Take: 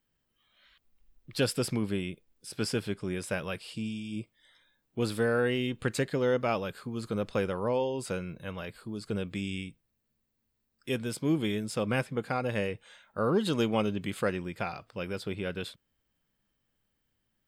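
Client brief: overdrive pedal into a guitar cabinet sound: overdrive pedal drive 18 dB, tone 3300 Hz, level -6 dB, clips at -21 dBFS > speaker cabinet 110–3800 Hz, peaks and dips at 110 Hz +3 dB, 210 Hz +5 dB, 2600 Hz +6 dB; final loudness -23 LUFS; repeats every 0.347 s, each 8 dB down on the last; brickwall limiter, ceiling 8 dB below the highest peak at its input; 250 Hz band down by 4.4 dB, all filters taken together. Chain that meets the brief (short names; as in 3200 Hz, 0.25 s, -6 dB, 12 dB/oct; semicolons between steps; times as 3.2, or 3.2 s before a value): bell 250 Hz -9 dB; limiter -24 dBFS; feedback echo 0.347 s, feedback 40%, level -8 dB; overdrive pedal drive 18 dB, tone 3300 Hz, level -6 dB, clips at -21 dBFS; speaker cabinet 110–3800 Hz, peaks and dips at 110 Hz +3 dB, 210 Hz +5 dB, 2600 Hz +6 dB; gain +8 dB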